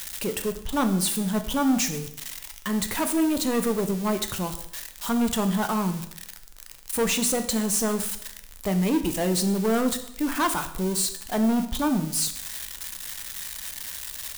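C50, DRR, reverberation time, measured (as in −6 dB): 11.5 dB, 7.5 dB, 0.70 s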